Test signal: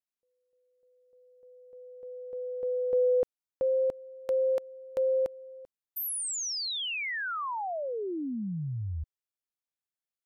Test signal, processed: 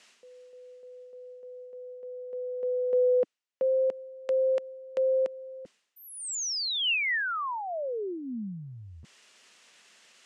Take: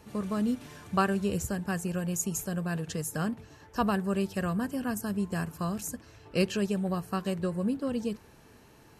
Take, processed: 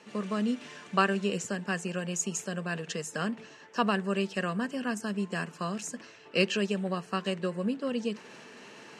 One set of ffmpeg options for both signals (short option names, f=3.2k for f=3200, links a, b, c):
-af "highpass=f=200:w=0.5412,highpass=f=200:w=1.3066,equalizer=f=300:t=q:w=4:g=-7,equalizer=f=800:t=q:w=4:g=-4,equalizer=f=1.9k:t=q:w=4:g=4,equalizer=f=2.8k:t=q:w=4:g=6,lowpass=f=7.8k:w=0.5412,lowpass=f=7.8k:w=1.3066,areverse,acompressor=mode=upward:threshold=-40dB:ratio=4:attack=0.16:release=352:knee=2.83:detection=peak,areverse,volume=2dB"